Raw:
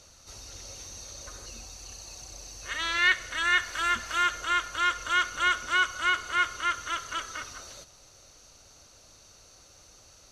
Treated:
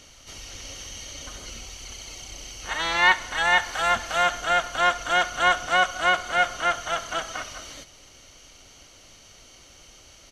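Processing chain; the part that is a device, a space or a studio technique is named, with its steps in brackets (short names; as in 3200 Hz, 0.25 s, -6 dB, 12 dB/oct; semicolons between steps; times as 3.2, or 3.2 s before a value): octave pedal (harmoniser -12 st -3 dB); gain +3 dB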